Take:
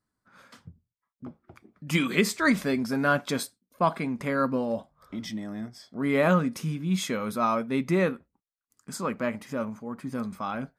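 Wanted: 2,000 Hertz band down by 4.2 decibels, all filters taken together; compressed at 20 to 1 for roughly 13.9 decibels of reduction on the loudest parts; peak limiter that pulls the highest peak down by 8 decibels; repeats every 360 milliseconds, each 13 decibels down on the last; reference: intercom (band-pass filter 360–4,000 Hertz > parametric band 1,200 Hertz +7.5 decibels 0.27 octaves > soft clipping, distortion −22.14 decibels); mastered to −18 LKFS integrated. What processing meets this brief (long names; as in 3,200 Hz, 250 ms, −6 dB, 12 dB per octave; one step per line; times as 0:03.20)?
parametric band 2,000 Hz −6.5 dB
downward compressor 20 to 1, threshold −32 dBFS
brickwall limiter −31.5 dBFS
band-pass filter 360–4,000 Hz
parametric band 1,200 Hz +7.5 dB 0.27 octaves
repeating echo 360 ms, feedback 22%, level −13 dB
soft clipping −30 dBFS
level +26.5 dB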